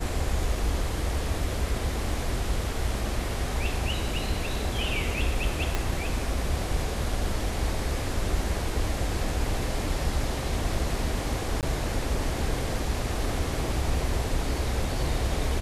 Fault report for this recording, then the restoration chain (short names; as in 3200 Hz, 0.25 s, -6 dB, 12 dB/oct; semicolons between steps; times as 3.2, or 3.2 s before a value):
5.75 pop -12 dBFS
11.61–11.63 gap 18 ms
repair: de-click; interpolate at 11.61, 18 ms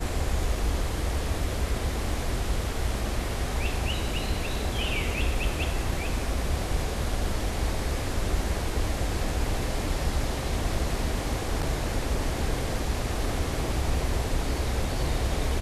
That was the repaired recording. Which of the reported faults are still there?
5.75 pop